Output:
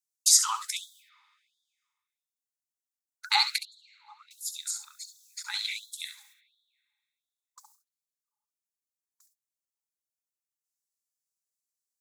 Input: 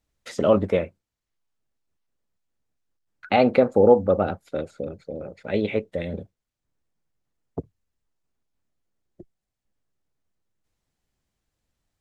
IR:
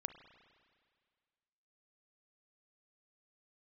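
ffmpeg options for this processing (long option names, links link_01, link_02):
-filter_complex "[0:a]aexciter=amount=14.2:drive=7.9:freq=4400,agate=range=-30dB:threshold=-46dB:ratio=16:detection=peak,asettb=1/sr,asplit=3[link_01][link_02][link_03];[link_01]atrim=end=3.584[link_04];[link_02]atrim=start=3.58:end=4.31,asetpts=PTS-STARTPTS,afade=type=in:duration=0.004:curve=qsin,afade=type=out:start_time=0.726:duration=0.004:curve=qsin,asplit=3[link_05][link_06][link_07];[link_05]bandpass=frequency=300:width_type=q:width=8,volume=0dB[link_08];[link_06]bandpass=frequency=870:width_type=q:width=8,volume=-6dB[link_09];[link_07]bandpass=frequency=2240:width_type=q:width=8,volume=-9dB[link_10];[link_08][link_09][link_10]amix=inputs=3:normalize=0[link_11];[link_03]atrim=start=4.306[link_12];[link_04][link_11]acrossfade=duration=0.004:curve1=hsin:curve2=qsin[link_13];[link_13][link_12]acrossfade=duration=0.004:curve1=qsin:curve2=hsin,asplit=2[link_14][link_15];[1:a]atrim=start_sample=2205,adelay=68[link_16];[link_15][link_16]afir=irnorm=-1:irlink=0,volume=-7dB[link_17];[link_14][link_17]amix=inputs=2:normalize=0,afftfilt=real='re*gte(b*sr/1024,780*pow(3300/780,0.5+0.5*sin(2*PI*1.4*pts/sr)))':imag='im*gte(b*sr/1024,780*pow(3300/780,0.5+0.5*sin(2*PI*1.4*pts/sr)))':win_size=1024:overlap=0.75"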